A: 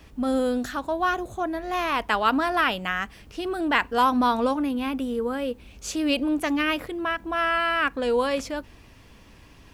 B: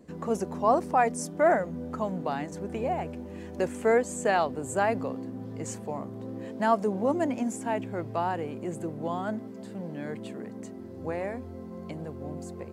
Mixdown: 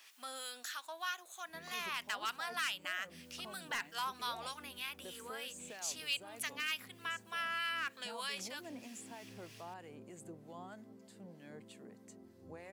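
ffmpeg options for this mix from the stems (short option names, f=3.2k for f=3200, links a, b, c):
-filter_complex "[0:a]highpass=1.4k,volume=18.5dB,asoftclip=hard,volume=-18.5dB,volume=-4dB[a];[1:a]alimiter=limit=-22dB:level=0:latency=1,adelay=1450,volume=-14.5dB[b];[a][b]amix=inputs=2:normalize=0,highshelf=f=2.5k:g=10.5,acrossover=split=1300[c][d];[c]aeval=exprs='val(0)*(1-0.5/2+0.5/2*cos(2*PI*3.2*n/s))':c=same[e];[d]aeval=exprs='val(0)*(1-0.5/2-0.5/2*cos(2*PI*3.2*n/s))':c=same[f];[e][f]amix=inputs=2:normalize=0,acompressor=threshold=-49dB:ratio=1.5"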